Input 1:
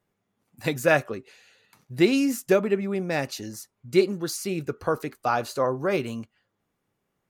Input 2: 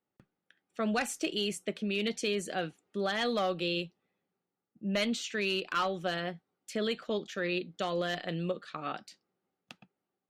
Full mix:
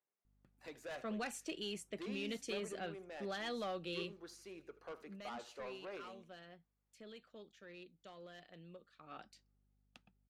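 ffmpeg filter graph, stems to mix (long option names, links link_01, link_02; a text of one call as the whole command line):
ffmpeg -i stem1.wav -i stem2.wav -filter_complex "[0:a]highpass=400,aemphasis=mode=reproduction:type=50fm,asoftclip=type=tanh:threshold=-24.5dB,volume=-18dB,asplit=2[link_01][link_02];[link_02]volume=-17dB[link_03];[1:a]asoftclip=type=tanh:threshold=-21.5dB,aeval=exprs='val(0)+0.000631*(sin(2*PI*50*n/s)+sin(2*PI*2*50*n/s)/2+sin(2*PI*3*50*n/s)/3+sin(2*PI*4*50*n/s)/4+sin(2*PI*5*50*n/s)/5)':channel_layout=same,adelay=250,volume=-0.5dB,afade=type=out:start_time=4.76:duration=0.45:silence=0.266073,afade=type=in:start_time=8.97:duration=0.28:silence=0.334965[link_04];[link_03]aecho=0:1:78|156|234|312|390:1|0.39|0.152|0.0593|0.0231[link_05];[link_01][link_04][link_05]amix=inputs=3:normalize=0" out.wav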